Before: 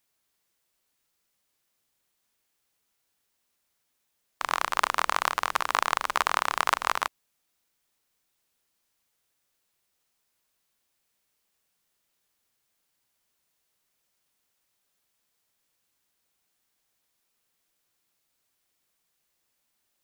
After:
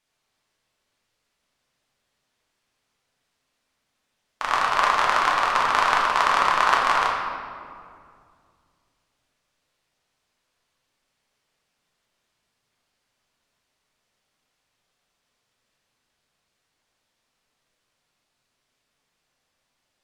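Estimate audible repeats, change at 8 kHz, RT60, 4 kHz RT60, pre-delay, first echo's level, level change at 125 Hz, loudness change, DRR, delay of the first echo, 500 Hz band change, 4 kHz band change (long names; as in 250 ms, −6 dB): no echo audible, −0.5 dB, 2.3 s, 1.3 s, 5 ms, no echo audible, can't be measured, +6.5 dB, −3.5 dB, no echo audible, +7.5 dB, +4.5 dB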